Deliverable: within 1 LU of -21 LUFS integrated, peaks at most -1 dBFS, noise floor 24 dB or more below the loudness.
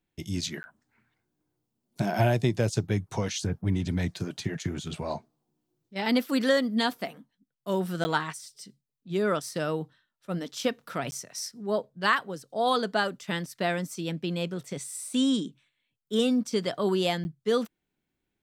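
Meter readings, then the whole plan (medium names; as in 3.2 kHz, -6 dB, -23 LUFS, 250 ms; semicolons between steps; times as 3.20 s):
dropouts 4; longest dropout 10 ms; loudness -29.0 LUFS; peak level -10.0 dBFS; loudness target -21.0 LUFS
-> interpolate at 0.63/8.04/11.11/17.24 s, 10 ms; trim +8 dB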